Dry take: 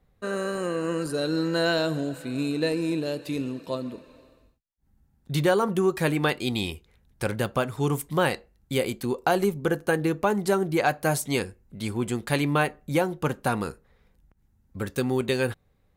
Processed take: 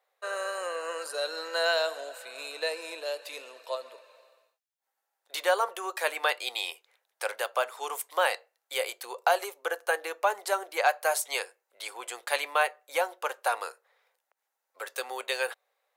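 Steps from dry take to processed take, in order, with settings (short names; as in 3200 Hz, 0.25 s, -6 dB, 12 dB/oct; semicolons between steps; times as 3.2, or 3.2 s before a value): steep high-pass 540 Hz 36 dB/oct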